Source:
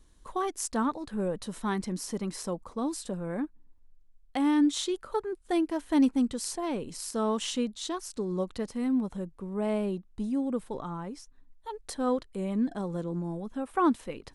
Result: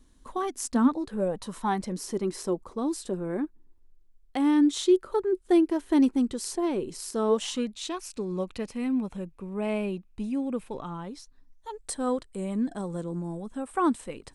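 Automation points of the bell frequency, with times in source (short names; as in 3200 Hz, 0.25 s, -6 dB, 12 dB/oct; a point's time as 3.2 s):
bell +12 dB 0.31 oct
0.87 s 250 Hz
1.53 s 1200 Hz
2.05 s 370 Hz
7.28 s 370 Hz
7.74 s 2500 Hz
10.77 s 2500 Hz
11.87 s 8300 Hz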